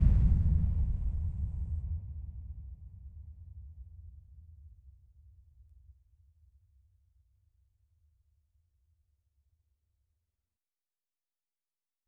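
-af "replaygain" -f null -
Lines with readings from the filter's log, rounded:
track_gain = +22.2 dB
track_peak = 0.156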